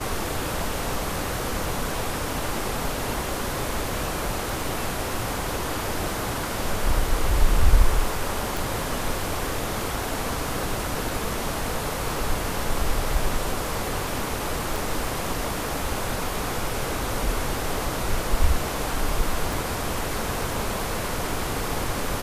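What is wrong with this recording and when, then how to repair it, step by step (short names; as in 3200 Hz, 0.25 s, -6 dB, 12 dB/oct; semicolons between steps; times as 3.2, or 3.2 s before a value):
8.57 pop
14.76 pop
19.53 pop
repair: de-click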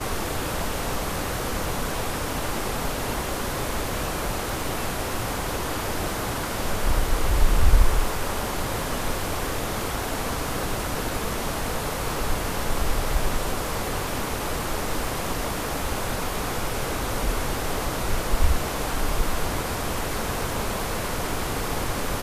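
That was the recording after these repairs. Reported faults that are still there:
none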